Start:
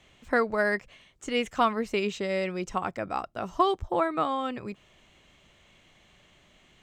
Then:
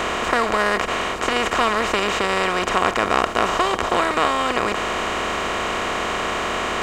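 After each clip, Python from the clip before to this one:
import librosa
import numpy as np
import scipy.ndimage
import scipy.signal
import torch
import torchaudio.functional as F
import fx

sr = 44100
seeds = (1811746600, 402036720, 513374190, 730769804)

y = fx.bin_compress(x, sr, power=0.2)
y = fx.high_shelf(y, sr, hz=2600.0, db=8.5)
y = F.gain(torch.from_numpy(y), -2.5).numpy()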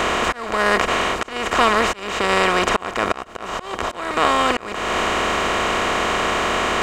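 y = fx.auto_swell(x, sr, attack_ms=395.0)
y = F.gain(torch.from_numpy(y), 3.5).numpy()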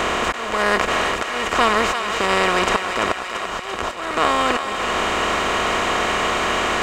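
y = fx.echo_thinned(x, sr, ms=339, feedback_pct=68, hz=640.0, wet_db=-6.5)
y = F.gain(torch.from_numpy(y), -1.0).numpy()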